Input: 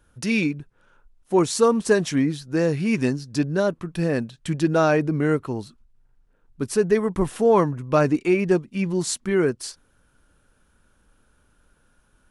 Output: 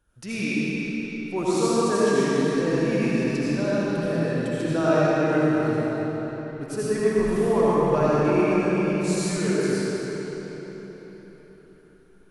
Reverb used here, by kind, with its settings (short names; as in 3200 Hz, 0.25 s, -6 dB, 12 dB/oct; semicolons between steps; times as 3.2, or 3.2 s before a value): digital reverb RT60 4.5 s, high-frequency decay 0.8×, pre-delay 40 ms, DRR -10 dB; gain -10.5 dB